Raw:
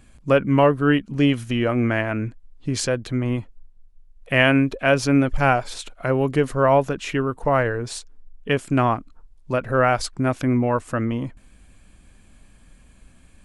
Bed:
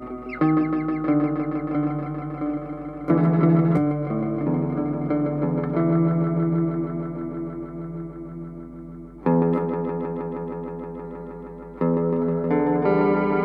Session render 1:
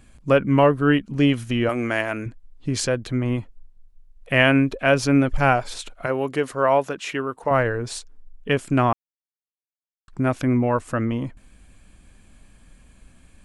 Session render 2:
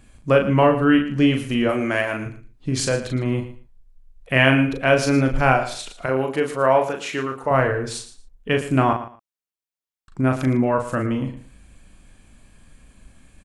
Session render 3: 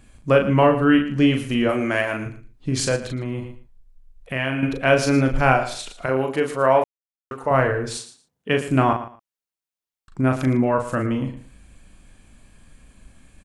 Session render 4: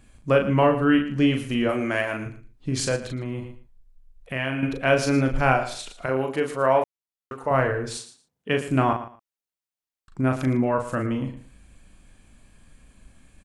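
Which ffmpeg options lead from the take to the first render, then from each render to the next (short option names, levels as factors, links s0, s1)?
-filter_complex "[0:a]asettb=1/sr,asplit=3[s0][s1][s2];[s0]atrim=end=1.694[s3];[s1]atrim=start=1.69:end=2.26,asetpts=PTS-STARTPTS,afade=t=in:d=0.004:c=qsin,afade=t=out:st=0.566:d=0.004:c=qsin,bass=f=250:g=-10,treble=f=4000:g=12[s4];[s2]atrim=start=2.256[s5];[s3][s4]acrossfade=d=0.004:c1=hsin:c2=qsin[s6];[s6][s5]acrossfade=d=0.004:c1=qsin:c2=hsin,asettb=1/sr,asplit=3[s7][s8][s9];[s7]atrim=end=6.064[s10];[s8]atrim=start=6.06:end=7.51,asetpts=PTS-STARTPTS,afade=t=in:d=0.004:c=qsin,afade=t=out:st=1.446:d=0.004:c=qsin,highpass=f=410:p=1[s11];[s9]atrim=start=7.506[s12];[s10][s11]acrossfade=d=0.004:c1=hsin:c2=qsin[s13];[s13][s12]acrossfade=d=0.004:c1=qsin:c2=hsin,asplit=3[s14][s15][s16];[s14]atrim=end=8.93,asetpts=PTS-STARTPTS,afade=t=out:st=8.926:d=0.004:c=hsin[s17];[s15]atrim=start=8.93:end=10.08,asetpts=PTS-STARTPTS,volume=0[s18];[s16]atrim=start=10.08,asetpts=PTS-STARTPTS,afade=t=in:d=0.004:c=hsin[s19];[s17][s18][s19]concat=n=3:v=0:a=1"
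-filter_complex "[0:a]asplit=2[s0][s1];[s1]adelay=38,volume=0.562[s2];[s0][s2]amix=inputs=2:normalize=0,aecho=1:1:114|228:0.224|0.0425"
-filter_complex "[0:a]asettb=1/sr,asplit=3[s0][s1][s2];[s0]atrim=end=2.964[s3];[s1]atrim=start=2.96:end=4.63,asetpts=PTS-STARTPTS,afade=t=in:d=0.004:c=qsin,afade=t=out:st=1.666:d=0.004:c=qsin,acompressor=threshold=0.0447:ratio=2:attack=3.2:release=140:knee=1:detection=peak[s4];[s2]atrim=start=4.626[s5];[s3][s4]acrossfade=d=0.004:c1=hsin:c2=qsin[s6];[s6][s5]acrossfade=d=0.004:c1=qsin:c2=hsin,asettb=1/sr,asplit=3[s7][s8][s9];[s7]atrim=end=7.974[s10];[s8]atrim=start=7.97:end=8.68,asetpts=PTS-STARTPTS,afade=t=in:d=0.004:c=qsin,afade=t=out:st=0.706:d=0.004:c=qsin,highpass=f=120:w=0.5412,highpass=f=120:w=1.3066[s11];[s9]atrim=start=8.676[s12];[s10][s11]acrossfade=d=0.004:c1=hsin:c2=qsin[s13];[s13][s12]acrossfade=d=0.004:c1=qsin:c2=hsin,asplit=3[s14][s15][s16];[s14]atrim=end=6.84,asetpts=PTS-STARTPTS,afade=t=out:st=6.836:d=0.004:c=hsin[s17];[s15]atrim=start=6.84:end=7.31,asetpts=PTS-STARTPTS,volume=0[s18];[s16]atrim=start=7.31,asetpts=PTS-STARTPTS,afade=t=in:d=0.004:c=hsin[s19];[s17][s18][s19]concat=n=3:v=0:a=1"
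-af "volume=0.708"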